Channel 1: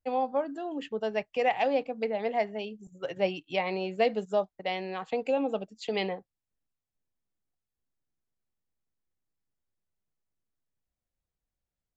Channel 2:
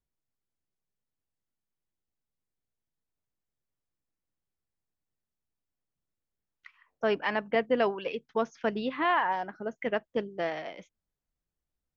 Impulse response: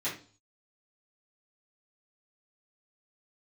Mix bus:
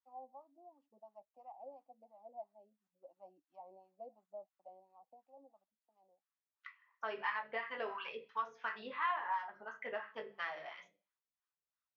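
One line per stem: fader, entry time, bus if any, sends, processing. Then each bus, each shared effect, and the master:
−16.5 dB, 0.00 s, no send, flat-topped bell 2,400 Hz −14.5 dB; phaser with its sweep stopped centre 440 Hz, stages 6; automatic ducking −20 dB, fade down 1.90 s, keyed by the second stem
−1.5 dB, 0.00 s, send −4.5 dB, drawn EQ curve 140 Hz 0 dB, 290 Hz −13 dB, 660 Hz −11 dB, 1,100 Hz +4 dB, 2,200 Hz +8 dB, 4,300 Hz +14 dB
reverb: on, RT60 0.40 s, pre-delay 3 ms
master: LFO wah 2.9 Hz 480–1,200 Hz, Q 3; downward compressor 2 to 1, threshold −38 dBFS, peak gain reduction 8.5 dB

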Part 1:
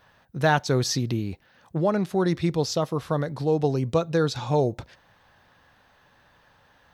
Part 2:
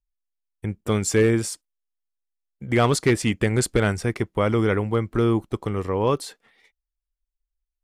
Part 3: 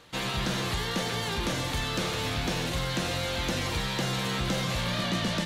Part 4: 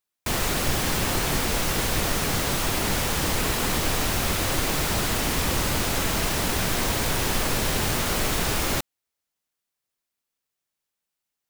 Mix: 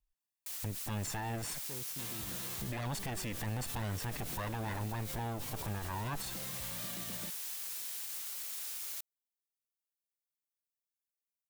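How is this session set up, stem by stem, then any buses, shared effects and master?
−18.5 dB, 1.00 s, no send, phase distortion by the signal itself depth 0.49 ms; brickwall limiter −19.5 dBFS, peak gain reduction 11 dB
+0.5 dB, 0.00 s, no send, lower of the sound and its delayed copy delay 1.1 ms
−16.5 dB, 1.85 s, no send, no processing
−13.5 dB, 0.20 s, no send, first difference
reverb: not used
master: brickwall limiter −30.5 dBFS, peak gain reduction 19.5 dB

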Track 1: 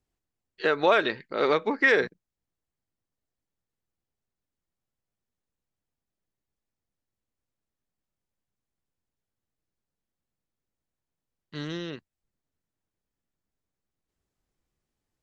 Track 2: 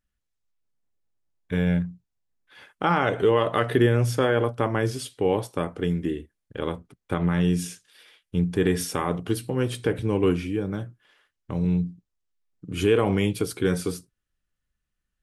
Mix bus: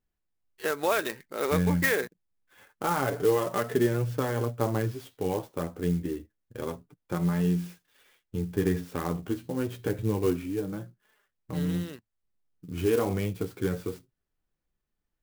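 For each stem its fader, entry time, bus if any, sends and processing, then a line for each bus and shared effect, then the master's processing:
−5.0 dB, 0.00 s, no send, no processing
−1.0 dB, 0.00 s, no send, de-essing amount 65%; high-shelf EQ 2,800 Hz −9 dB; flanger 0.27 Hz, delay 4.5 ms, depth 8.4 ms, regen +24%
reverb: not used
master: converter with an unsteady clock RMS 0.037 ms

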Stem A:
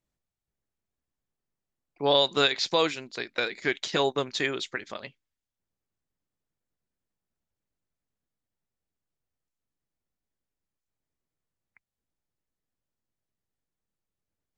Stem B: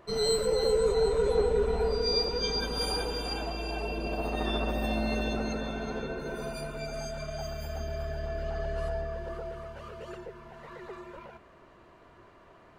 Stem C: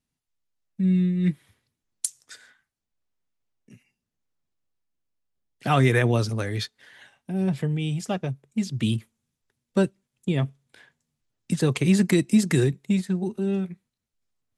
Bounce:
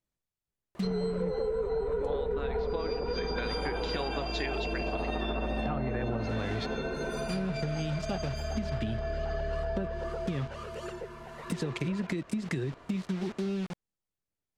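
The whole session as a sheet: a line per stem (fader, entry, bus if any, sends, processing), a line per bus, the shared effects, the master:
−4.0 dB, 0.00 s, bus A, no send, no processing
+2.5 dB, 0.75 s, no bus, no send, high-shelf EQ 6,000 Hz +10.5 dB
−3.0 dB, 0.00 s, bus A, no send, bit reduction 6 bits
bus A: 0.0 dB, downward compressor 6 to 1, threshold −25 dBFS, peak gain reduction 8.5 dB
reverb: not used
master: treble cut that deepens with the level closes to 1,600 Hz, closed at −20.5 dBFS; downward compressor, threshold −28 dBFS, peak gain reduction 9.5 dB

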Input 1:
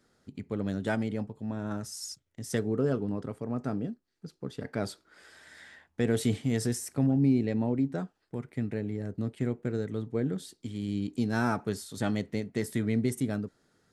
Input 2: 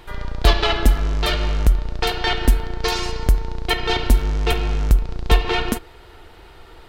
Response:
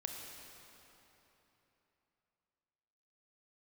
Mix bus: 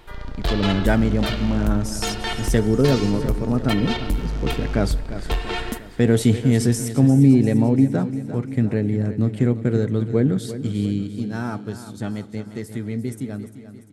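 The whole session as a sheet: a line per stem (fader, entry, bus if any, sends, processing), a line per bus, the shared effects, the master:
0:10.84 −2 dB → 0:11.17 −12.5 dB, 0.00 s, send −15 dB, echo send −11.5 dB, low-shelf EQ 250 Hz +5.5 dB; automatic gain control gain up to 10 dB
−6.0 dB, 0.00 s, send −13.5 dB, no echo send, soft clipping −10.5 dBFS, distortion −13 dB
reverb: on, RT60 3.4 s, pre-delay 25 ms
echo: repeating echo 347 ms, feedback 55%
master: no processing

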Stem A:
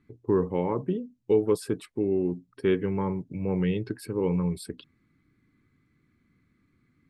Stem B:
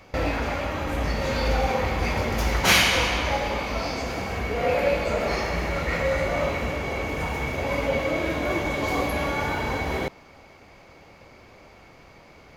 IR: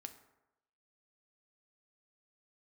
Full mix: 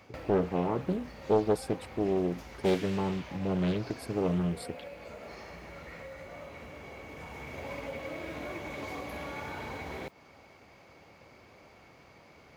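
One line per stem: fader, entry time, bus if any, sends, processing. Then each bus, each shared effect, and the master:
−2.5 dB, 0.00 s, no send, no processing
−6.0 dB, 0.00 s, no send, downward compressor, threshold −30 dBFS, peak gain reduction 15.5 dB; noise that follows the level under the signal 27 dB; automatic ducking −6 dB, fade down 0.30 s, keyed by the first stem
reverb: not used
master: high-pass filter 71 Hz; highs frequency-modulated by the lows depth 0.61 ms

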